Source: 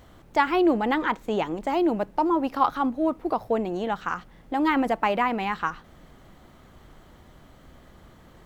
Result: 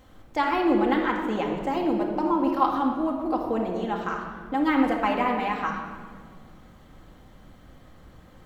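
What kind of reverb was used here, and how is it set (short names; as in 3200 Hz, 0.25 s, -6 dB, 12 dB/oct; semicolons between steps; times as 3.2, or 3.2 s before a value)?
shoebox room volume 2300 m³, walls mixed, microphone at 2.1 m; gain -4 dB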